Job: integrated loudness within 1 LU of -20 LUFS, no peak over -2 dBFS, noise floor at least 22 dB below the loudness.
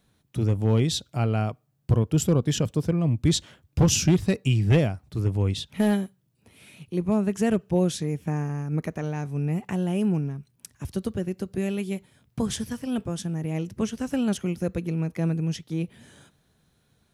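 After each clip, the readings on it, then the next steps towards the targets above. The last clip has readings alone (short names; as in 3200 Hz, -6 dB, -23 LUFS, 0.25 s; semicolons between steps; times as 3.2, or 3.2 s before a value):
clipped 0.4%; flat tops at -13.0 dBFS; loudness -26.0 LUFS; peak -13.0 dBFS; loudness target -20.0 LUFS
-> clip repair -13 dBFS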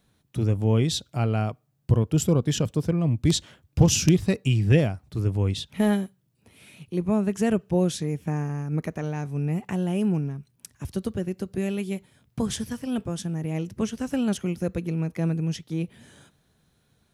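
clipped 0.0%; loudness -26.0 LUFS; peak -4.0 dBFS; loudness target -20.0 LUFS
-> gain +6 dB; limiter -2 dBFS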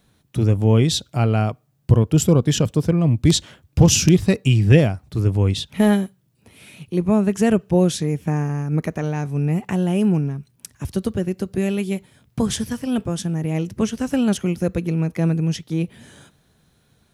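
loudness -20.0 LUFS; peak -2.0 dBFS; noise floor -62 dBFS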